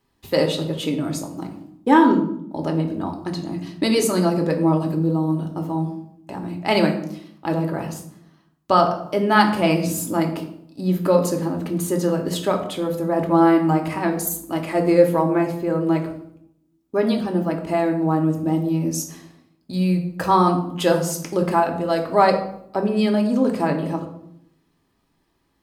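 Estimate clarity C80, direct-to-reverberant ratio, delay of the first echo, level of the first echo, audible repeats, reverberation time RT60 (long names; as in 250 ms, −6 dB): 12.0 dB, 2.5 dB, no echo audible, no echo audible, no echo audible, 0.75 s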